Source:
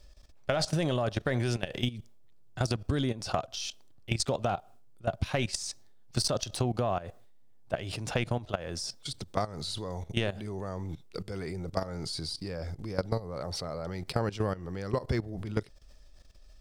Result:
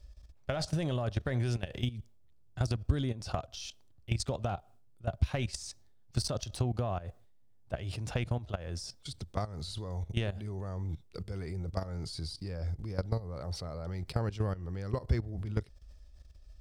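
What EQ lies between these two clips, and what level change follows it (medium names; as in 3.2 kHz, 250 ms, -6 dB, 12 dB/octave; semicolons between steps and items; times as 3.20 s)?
peaking EQ 62 Hz +14 dB 1.8 oct; -6.5 dB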